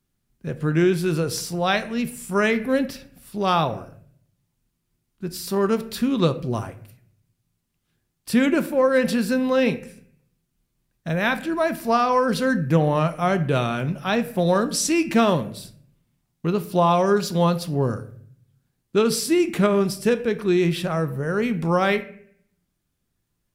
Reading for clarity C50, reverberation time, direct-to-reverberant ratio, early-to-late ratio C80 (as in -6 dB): 15.0 dB, 0.60 s, 9.5 dB, 18.5 dB